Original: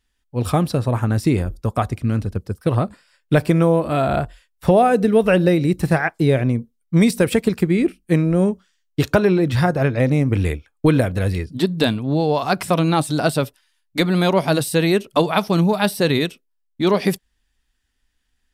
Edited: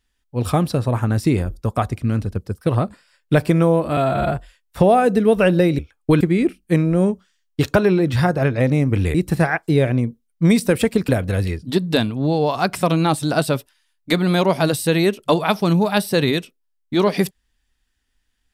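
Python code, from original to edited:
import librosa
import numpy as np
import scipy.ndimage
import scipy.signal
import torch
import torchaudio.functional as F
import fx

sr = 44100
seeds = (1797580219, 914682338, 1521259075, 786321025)

y = fx.edit(x, sr, fx.stretch_span(start_s=3.97, length_s=0.25, factor=1.5),
    fx.swap(start_s=5.66, length_s=1.94, other_s=10.54, other_length_s=0.42), tone=tone)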